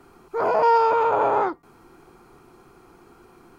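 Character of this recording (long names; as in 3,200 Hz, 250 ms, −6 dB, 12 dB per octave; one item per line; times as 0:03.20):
background noise floor −53 dBFS
spectral slope +1.0 dB per octave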